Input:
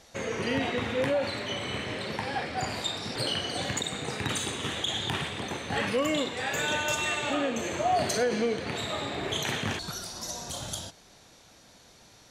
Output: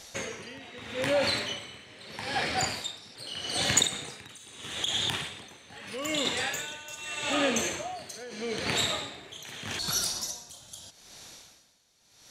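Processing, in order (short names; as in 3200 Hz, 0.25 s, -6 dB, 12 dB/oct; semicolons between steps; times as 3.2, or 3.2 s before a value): high shelf 2200 Hz +10.5 dB; 3.84–6.25 compressor, threshold -26 dBFS, peak gain reduction 8 dB; dB-linear tremolo 0.8 Hz, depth 21 dB; gain +1.5 dB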